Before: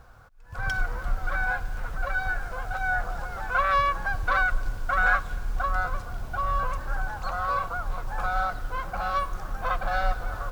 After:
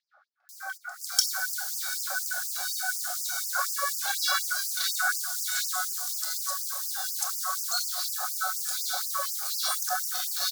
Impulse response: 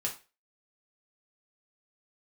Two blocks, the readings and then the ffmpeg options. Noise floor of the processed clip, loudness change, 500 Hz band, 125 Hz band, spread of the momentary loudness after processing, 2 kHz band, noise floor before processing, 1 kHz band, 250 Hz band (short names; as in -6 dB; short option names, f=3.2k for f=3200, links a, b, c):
-57 dBFS, +0.5 dB, -11.0 dB, under -40 dB, 4 LU, -5.5 dB, -40 dBFS, -8.0 dB, under -40 dB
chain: -filter_complex "[0:a]acrossover=split=1900[a][b];[b]adelay=490[c];[a][c]amix=inputs=2:normalize=0,aexciter=amount=10.3:drive=9.1:freq=4.1k,asuperstop=centerf=980:order=4:qfactor=3.9,asplit=2[d][e];[1:a]atrim=start_sample=2205,lowpass=4.1k,adelay=26[f];[e][f]afir=irnorm=-1:irlink=0,volume=-4dB[g];[d][g]amix=inputs=2:normalize=0,afftfilt=real='re*gte(b*sr/1024,540*pow(4800/540,0.5+0.5*sin(2*PI*4.1*pts/sr)))':imag='im*gte(b*sr/1024,540*pow(4800/540,0.5+0.5*sin(2*PI*4.1*pts/sr)))':win_size=1024:overlap=0.75,volume=-2.5dB"